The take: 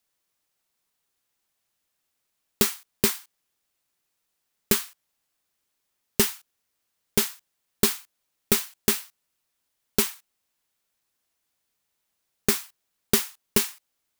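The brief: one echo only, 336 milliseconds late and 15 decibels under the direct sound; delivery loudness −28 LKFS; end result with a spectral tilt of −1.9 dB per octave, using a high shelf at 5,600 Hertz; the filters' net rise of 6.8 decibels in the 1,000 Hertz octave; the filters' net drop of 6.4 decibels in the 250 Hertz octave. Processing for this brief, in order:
parametric band 250 Hz −9 dB
parametric band 1,000 Hz +9 dB
high-shelf EQ 5,600 Hz −4 dB
single-tap delay 336 ms −15 dB
level −0.5 dB

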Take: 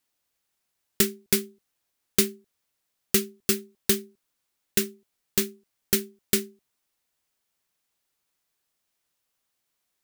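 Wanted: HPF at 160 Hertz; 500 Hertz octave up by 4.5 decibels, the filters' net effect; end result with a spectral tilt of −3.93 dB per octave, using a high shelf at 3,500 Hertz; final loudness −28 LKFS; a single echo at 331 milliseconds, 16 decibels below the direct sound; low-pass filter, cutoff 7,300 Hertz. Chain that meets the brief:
high-pass filter 160 Hz
low-pass filter 7,300 Hz
parametric band 500 Hz +7 dB
high-shelf EQ 3,500 Hz −7 dB
single-tap delay 331 ms −16 dB
level +1.5 dB

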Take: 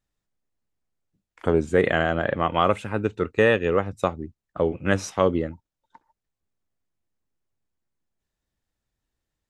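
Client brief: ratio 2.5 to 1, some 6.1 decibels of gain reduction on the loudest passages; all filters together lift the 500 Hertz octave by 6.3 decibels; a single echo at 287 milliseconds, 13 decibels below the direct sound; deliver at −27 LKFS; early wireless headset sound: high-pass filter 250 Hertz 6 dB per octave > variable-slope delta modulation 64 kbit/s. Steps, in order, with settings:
parametric band 500 Hz +8.5 dB
downward compressor 2.5 to 1, threshold −17 dBFS
high-pass filter 250 Hz 6 dB per octave
single-tap delay 287 ms −13 dB
variable-slope delta modulation 64 kbit/s
level −3 dB

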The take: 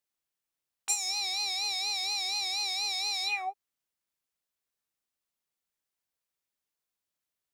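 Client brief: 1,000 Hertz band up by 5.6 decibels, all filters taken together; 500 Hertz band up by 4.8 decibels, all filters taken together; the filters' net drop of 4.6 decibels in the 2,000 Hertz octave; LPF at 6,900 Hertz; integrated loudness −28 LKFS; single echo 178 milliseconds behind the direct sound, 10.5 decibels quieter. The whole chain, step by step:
low-pass filter 6,900 Hz
parametric band 500 Hz +5.5 dB
parametric band 1,000 Hz +6.5 dB
parametric band 2,000 Hz −7 dB
single-tap delay 178 ms −10.5 dB
level +2.5 dB

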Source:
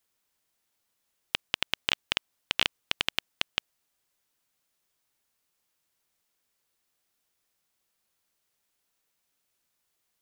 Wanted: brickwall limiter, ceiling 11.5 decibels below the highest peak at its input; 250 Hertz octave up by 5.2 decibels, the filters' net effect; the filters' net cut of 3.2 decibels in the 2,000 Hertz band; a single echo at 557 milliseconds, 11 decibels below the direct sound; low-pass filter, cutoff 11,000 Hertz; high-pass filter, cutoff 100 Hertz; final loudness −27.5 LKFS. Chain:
high-pass filter 100 Hz
low-pass filter 11,000 Hz
parametric band 250 Hz +7 dB
parametric band 2,000 Hz −4.5 dB
brickwall limiter −17 dBFS
single-tap delay 557 ms −11 dB
level +16.5 dB

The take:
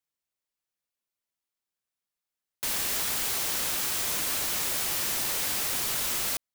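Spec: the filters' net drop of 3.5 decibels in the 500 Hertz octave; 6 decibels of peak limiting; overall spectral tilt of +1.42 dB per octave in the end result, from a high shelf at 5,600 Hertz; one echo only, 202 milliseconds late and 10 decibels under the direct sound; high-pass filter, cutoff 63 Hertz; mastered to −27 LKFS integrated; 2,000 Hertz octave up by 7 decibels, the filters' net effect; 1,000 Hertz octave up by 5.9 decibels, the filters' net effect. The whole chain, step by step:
high-pass filter 63 Hz
parametric band 500 Hz −7.5 dB
parametric band 1,000 Hz +7 dB
parametric band 2,000 Hz +6 dB
high-shelf EQ 5,600 Hz +8 dB
brickwall limiter −15.5 dBFS
single-tap delay 202 ms −10 dB
level −5 dB

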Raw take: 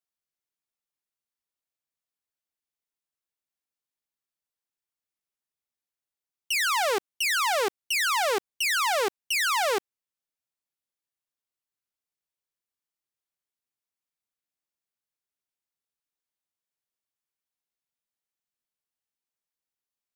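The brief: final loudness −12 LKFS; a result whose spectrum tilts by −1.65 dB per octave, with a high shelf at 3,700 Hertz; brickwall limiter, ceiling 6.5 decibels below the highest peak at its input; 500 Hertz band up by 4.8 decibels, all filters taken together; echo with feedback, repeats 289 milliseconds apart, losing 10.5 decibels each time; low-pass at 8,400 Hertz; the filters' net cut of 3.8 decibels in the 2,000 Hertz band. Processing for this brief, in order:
low-pass filter 8,400 Hz
parametric band 500 Hz +6 dB
parametric band 2,000 Hz −6.5 dB
high-shelf EQ 3,700 Hz +4.5 dB
brickwall limiter −23 dBFS
repeating echo 289 ms, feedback 30%, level −10.5 dB
level +17.5 dB

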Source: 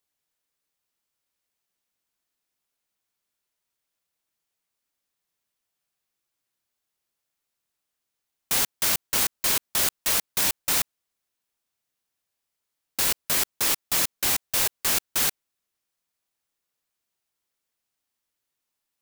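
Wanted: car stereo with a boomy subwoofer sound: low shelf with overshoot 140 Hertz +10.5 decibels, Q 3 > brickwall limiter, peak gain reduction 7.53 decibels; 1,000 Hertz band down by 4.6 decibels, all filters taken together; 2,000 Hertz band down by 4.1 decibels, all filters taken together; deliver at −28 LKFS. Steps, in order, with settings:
low shelf with overshoot 140 Hz +10.5 dB, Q 3
parametric band 1,000 Hz −4.5 dB
parametric band 2,000 Hz −4 dB
level −0.5 dB
brickwall limiter −17 dBFS

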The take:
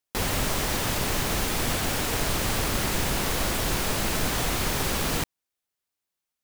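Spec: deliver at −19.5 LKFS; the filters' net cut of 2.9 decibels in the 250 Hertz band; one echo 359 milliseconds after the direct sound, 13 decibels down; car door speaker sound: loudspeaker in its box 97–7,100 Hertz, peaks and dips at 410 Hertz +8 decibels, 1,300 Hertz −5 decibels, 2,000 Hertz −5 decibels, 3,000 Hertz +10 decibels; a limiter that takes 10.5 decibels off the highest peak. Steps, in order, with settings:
parametric band 250 Hz −5.5 dB
brickwall limiter −23.5 dBFS
loudspeaker in its box 97–7,100 Hz, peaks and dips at 410 Hz +8 dB, 1,300 Hz −5 dB, 2,000 Hz −5 dB, 3,000 Hz +10 dB
single-tap delay 359 ms −13 dB
level +12.5 dB

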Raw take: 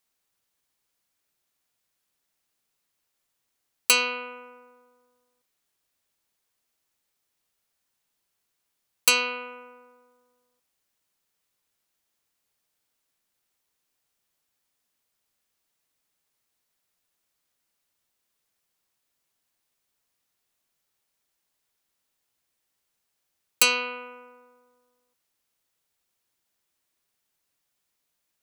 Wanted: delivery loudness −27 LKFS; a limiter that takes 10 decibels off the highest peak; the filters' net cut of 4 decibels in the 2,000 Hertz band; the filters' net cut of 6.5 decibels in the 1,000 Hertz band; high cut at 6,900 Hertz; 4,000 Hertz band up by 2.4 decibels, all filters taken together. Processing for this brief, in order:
low-pass filter 6,900 Hz
parametric band 1,000 Hz −5.5 dB
parametric band 2,000 Hz −8.5 dB
parametric band 4,000 Hz +6 dB
level +2 dB
brickwall limiter −16 dBFS

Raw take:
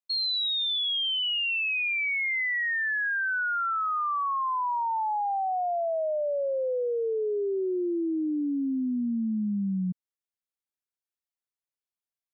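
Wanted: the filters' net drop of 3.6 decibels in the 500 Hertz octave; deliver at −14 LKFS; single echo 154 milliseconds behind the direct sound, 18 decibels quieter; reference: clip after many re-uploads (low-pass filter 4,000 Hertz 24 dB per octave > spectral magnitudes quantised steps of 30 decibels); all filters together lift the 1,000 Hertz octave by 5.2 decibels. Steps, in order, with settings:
low-pass filter 4,000 Hz 24 dB per octave
parametric band 500 Hz −7.5 dB
parametric band 1,000 Hz +8.5 dB
single-tap delay 154 ms −18 dB
spectral magnitudes quantised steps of 30 dB
level +12 dB

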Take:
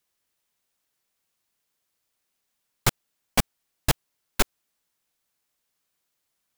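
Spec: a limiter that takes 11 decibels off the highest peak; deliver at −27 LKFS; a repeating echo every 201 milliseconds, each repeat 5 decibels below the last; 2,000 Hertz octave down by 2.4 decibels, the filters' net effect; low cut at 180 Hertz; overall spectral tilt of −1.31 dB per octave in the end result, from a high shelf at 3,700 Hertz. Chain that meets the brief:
high-pass filter 180 Hz
parametric band 2,000 Hz −5.5 dB
high-shelf EQ 3,700 Hz +8 dB
brickwall limiter −14.5 dBFS
repeating echo 201 ms, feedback 56%, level −5 dB
level +6 dB

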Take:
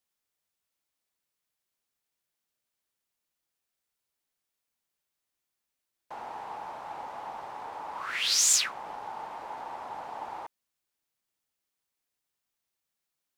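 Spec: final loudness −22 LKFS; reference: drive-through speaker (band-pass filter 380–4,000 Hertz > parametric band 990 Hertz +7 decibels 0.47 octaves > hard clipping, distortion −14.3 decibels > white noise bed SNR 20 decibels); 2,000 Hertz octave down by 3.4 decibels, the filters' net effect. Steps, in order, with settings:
band-pass filter 380–4,000 Hz
parametric band 990 Hz +7 dB 0.47 octaves
parametric band 2,000 Hz −4.5 dB
hard clipping −30.5 dBFS
white noise bed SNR 20 dB
level +14 dB

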